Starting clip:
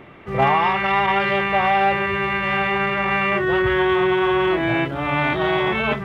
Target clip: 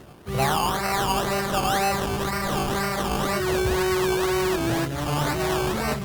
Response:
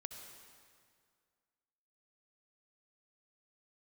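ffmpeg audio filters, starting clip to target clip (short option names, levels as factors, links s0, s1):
-filter_complex "[0:a]lowpass=3900,equalizer=f=70:t=o:w=2:g=8.5,asplit=2[s0][s1];[s1]asoftclip=type=tanh:threshold=0.126,volume=0.596[s2];[s0][s2]amix=inputs=2:normalize=0,acrusher=samples=18:mix=1:aa=0.000001:lfo=1:lforange=10.8:lforate=2,volume=0.398" -ar 48000 -c:a libopus -b:a 48k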